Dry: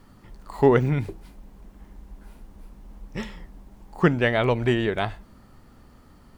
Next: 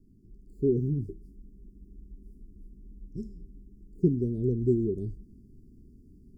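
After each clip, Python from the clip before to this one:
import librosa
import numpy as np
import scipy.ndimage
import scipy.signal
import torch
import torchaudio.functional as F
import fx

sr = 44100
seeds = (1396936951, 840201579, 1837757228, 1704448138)

y = scipy.signal.sosfilt(scipy.signal.cheby1(5, 1.0, [400.0, 4900.0], 'bandstop', fs=sr, output='sos'), x)
y = fx.high_shelf_res(y, sr, hz=2700.0, db=-13.5, q=1.5)
y = fx.rider(y, sr, range_db=10, speed_s=0.5)
y = F.gain(torch.from_numpy(y), -1.5).numpy()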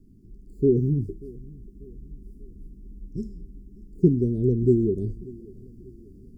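y = fx.echo_feedback(x, sr, ms=588, feedback_pct=46, wet_db=-22.0)
y = F.gain(torch.from_numpy(y), 5.5).numpy()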